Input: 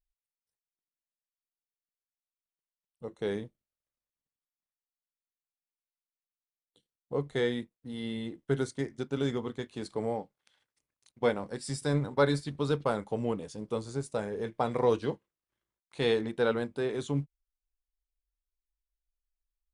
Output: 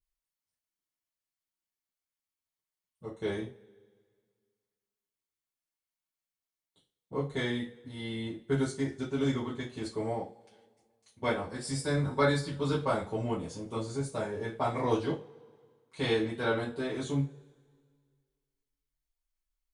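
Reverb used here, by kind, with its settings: two-slope reverb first 0.27 s, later 1.9 s, from -28 dB, DRR -8.5 dB; gain -7.5 dB

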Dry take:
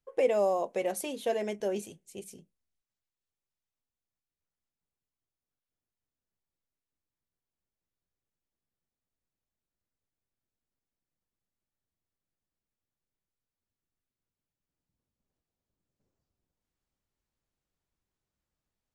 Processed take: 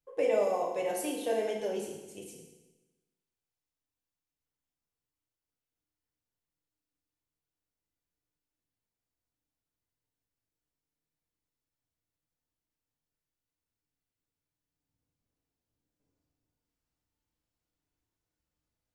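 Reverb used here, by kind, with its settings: FDN reverb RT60 1.1 s, low-frequency decay 1.1×, high-frequency decay 0.95×, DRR -2 dB; gain -4.5 dB

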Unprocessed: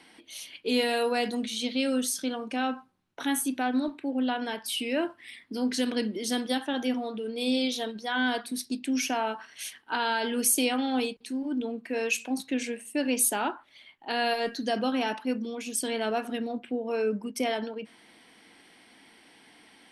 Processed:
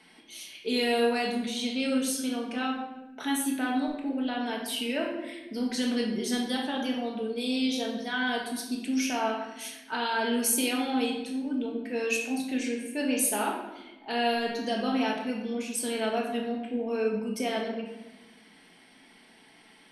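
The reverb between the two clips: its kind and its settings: shoebox room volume 470 m³, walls mixed, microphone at 1.5 m; gain -4 dB

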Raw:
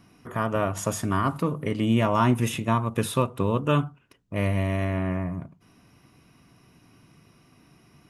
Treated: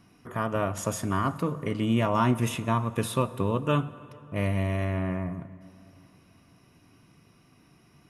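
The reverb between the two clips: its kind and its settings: plate-style reverb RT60 3.3 s, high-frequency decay 0.6×, pre-delay 0 ms, DRR 16 dB; gain -2.5 dB

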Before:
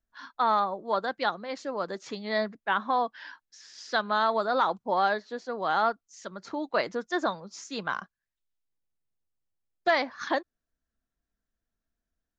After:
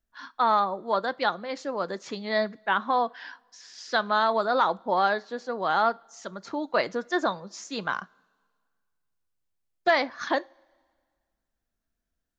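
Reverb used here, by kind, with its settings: two-slope reverb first 0.27 s, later 1.8 s, from -21 dB, DRR 17 dB; gain +2 dB

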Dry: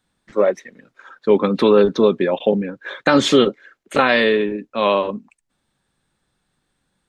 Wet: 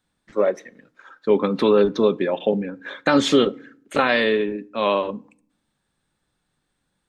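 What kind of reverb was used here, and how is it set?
FDN reverb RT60 0.55 s, low-frequency decay 1.55×, high-frequency decay 0.65×, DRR 18 dB; gain -3.5 dB

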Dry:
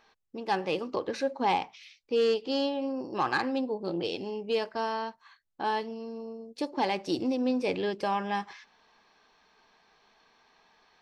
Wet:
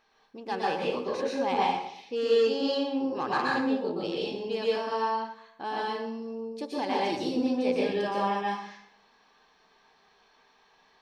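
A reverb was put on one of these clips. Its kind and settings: plate-style reverb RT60 0.68 s, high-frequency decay 0.8×, pre-delay 0.105 s, DRR -5 dB; gain -5 dB

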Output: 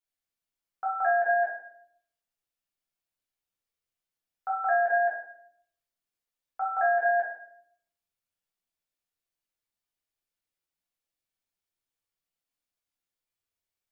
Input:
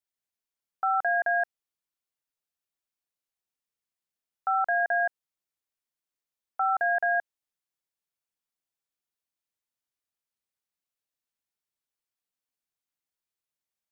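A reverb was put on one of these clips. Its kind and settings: shoebox room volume 120 m³, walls mixed, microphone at 1.8 m; gain -6.5 dB

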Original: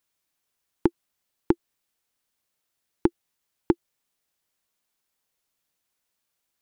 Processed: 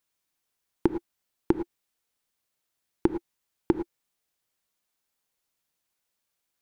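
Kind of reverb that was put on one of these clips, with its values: non-linear reverb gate 0.13 s rising, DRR 9.5 dB; gain -2 dB

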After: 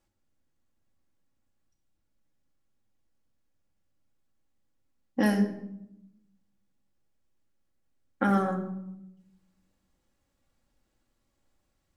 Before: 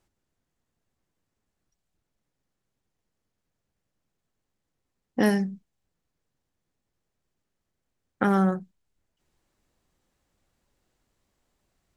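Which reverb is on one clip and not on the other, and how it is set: shoebox room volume 2600 m³, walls furnished, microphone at 2.3 m; gain -4.5 dB

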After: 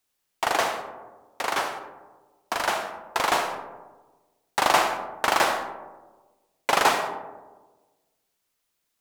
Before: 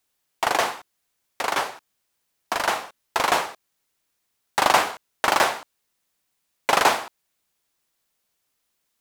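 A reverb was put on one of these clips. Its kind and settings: digital reverb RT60 1.3 s, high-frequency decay 0.3×, pre-delay 25 ms, DRR 6.5 dB; gain -2.5 dB

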